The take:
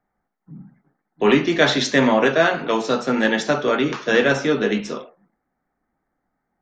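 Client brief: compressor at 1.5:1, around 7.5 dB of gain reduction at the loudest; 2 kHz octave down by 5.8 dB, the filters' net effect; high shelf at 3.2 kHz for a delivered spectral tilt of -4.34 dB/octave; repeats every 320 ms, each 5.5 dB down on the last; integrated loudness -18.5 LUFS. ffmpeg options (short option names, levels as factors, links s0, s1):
-af "equalizer=f=2000:t=o:g=-5,highshelf=f=3200:g=-9,acompressor=threshold=0.0224:ratio=1.5,aecho=1:1:320|640|960|1280|1600|1920|2240:0.531|0.281|0.149|0.079|0.0419|0.0222|0.0118,volume=2.37"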